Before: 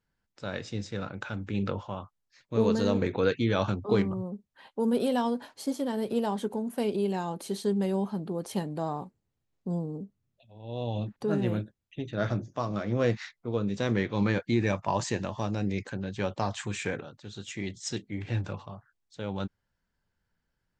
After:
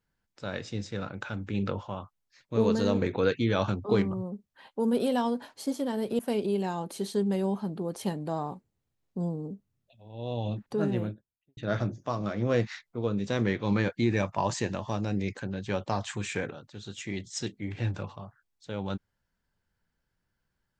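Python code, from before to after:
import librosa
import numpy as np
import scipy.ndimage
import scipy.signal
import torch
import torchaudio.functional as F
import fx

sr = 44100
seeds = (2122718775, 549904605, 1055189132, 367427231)

y = fx.studio_fade_out(x, sr, start_s=11.28, length_s=0.79)
y = fx.edit(y, sr, fx.cut(start_s=6.19, length_s=0.5), tone=tone)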